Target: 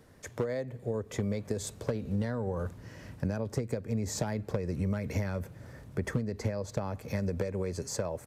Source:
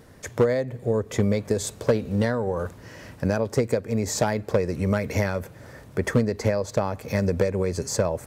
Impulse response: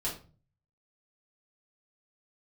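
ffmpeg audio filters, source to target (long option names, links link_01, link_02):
-filter_complex "[0:a]acrossover=split=250[link_01][link_02];[link_01]dynaudnorm=framelen=490:gausssize=7:maxgain=7dB[link_03];[link_03][link_02]amix=inputs=2:normalize=0,aresample=32000,aresample=44100,acompressor=threshold=-19dB:ratio=6,volume=-8dB"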